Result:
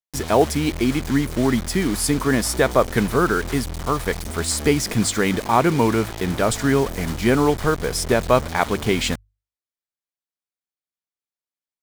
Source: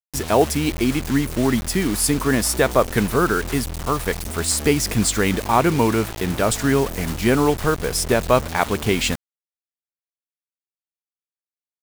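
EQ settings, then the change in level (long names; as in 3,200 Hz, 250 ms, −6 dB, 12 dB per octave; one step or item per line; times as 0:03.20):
high-shelf EQ 9,000 Hz −6.5 dB
mains-hum notches 50/100 Hz
notch filter 2,700 Hz, Q 17
0.0 dB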